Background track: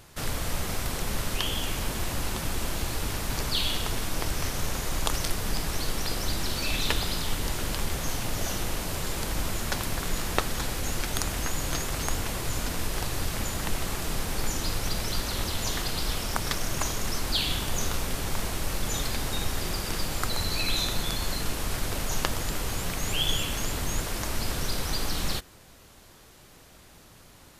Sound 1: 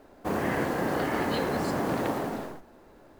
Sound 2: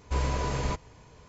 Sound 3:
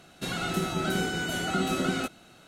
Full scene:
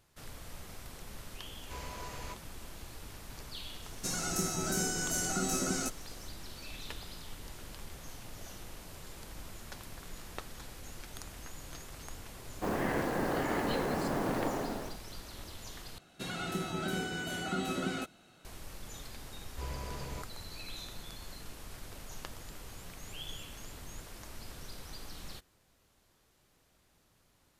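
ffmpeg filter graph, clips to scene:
-filter_complex "[2:a]asplit=2[a][b];[3:a]asplit=2[c][d];[0:a]volume=-17dB[e];[a]lowshelf=f=460:g=-11[f];[c]highshelf=f=4.5k:t=q:w=3:g=9.5[g];[e]asplit=2[h][i];[h]atrim=end=15.984[j];[d]atrim=end=2.47,asetpts=PTS-STARTPTS,volume=-7dB[k];[i]atrim=start=18.446[l];[f]atrim=end=1.28,asetpts=PTS-STARTPTS,volume=-9.5dB,afade=t=in:d=0.004:c=hsin,afade=t=out:st=1.276:d=0.004:c=hsin,adelay=1590[m];[g]atrim=end=2.47,asetpts=PTS-STARTPTS,volume=-6.5dB,afade=t=in:d=0.004:c=hsin,afade=t=out:st=2.466:d=0.004:c=hsin,adelay=3820[n];[1:a]atrim=end=3.19,asetpts=PTS-STARTPTS,volume=-4.5dB,afade=t=in:d=0.004:c=hsin,afade=t=out:st=3.186:d=0.004:c=hsin,adelay=12370[o];[b]atrim=end=1.28,asetpts=PTS-STARTPTS,volume=-12.5dB,afade=t=in:d=0.004:c=hsin,afade=t=out:st=1.276:d=0.004:c=hsin,adelay=19470[p];[j][k]acrossfade=d=0.004:c1=hsin:c2=hsin[q];[q][l]acrossfade=d=0.004:c1=hsin:c2=hsin[r];[r][m][n][o][p]amix=inputs=5:normalize=0"

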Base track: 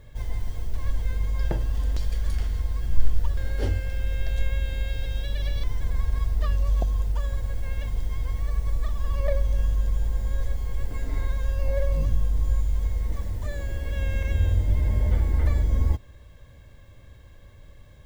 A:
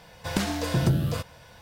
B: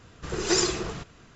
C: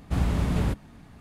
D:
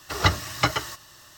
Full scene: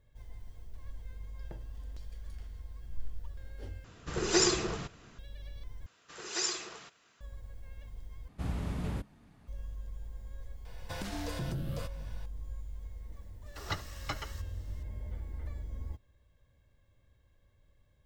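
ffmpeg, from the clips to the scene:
-filter_complex "[2:a]asplit=2[a][b];[0:a]volume=-18.5dB[c];[b]highpass=f=1.2k:p=1[d];[1:a]alimiter=limit=-23dB:level=0:latency=1:release=297[e];[4:a]aecho=1:1:71:0.0891[f];[c]asplit=4[g][h][i][j];[g]atrim=end=3.844[k];[a]atrim=end=1.35,asetpts=PTS-STARTPTS,volume=-2.5dB[l];[h]atrim=start=5.186:end=5.864[m];[d]atrim=end=1.35,asetpts=PTS-STARTPTS,volume=-7dB[n];[i]atrim=start=7.206:end=8.284[o];[3:a]atrim=end=1.2,asetpts=PTS-STARTPTS,volume=-10.5dB[p];[j]atrim=start=9.476[q];[e]atrim=end=1.61,asetpts=PTS-STARTPTS,volume=-6dB,afade=t=in:d=0.004:c=hsin,afade=t=out:st=1.606:d=0.004:c=hsin,adelay=10650[r];[f]atrim=end=1.37,asetpts=PTS-STARTPTS,volume=-16dB,afade=t=in:d=0.004:c=hsin,afade=t=out:st=1.366:d=0.004:c=hsin,adelay=13460[s];[k][l]acrossfade=d=0.004:c1=hsin:c2=hsin[t];[t][m]acrossfade=d=0.004:c1=hsin:c2=hsin[u];[u][n]acrossfade=d=0.004:c1=hsin:c2=hsin[v];[v][o]acrossfade=d=0.004:c1=hsin:c2=hsin[w];[w][p]acrossfade=d=0.004:c1=hsin:c2=hsin[x];[x][q]acrossfade=d=0.004:c1=hsin:c2=hsin[y];[y][r][s]amix=inputs=3:normalize=0"

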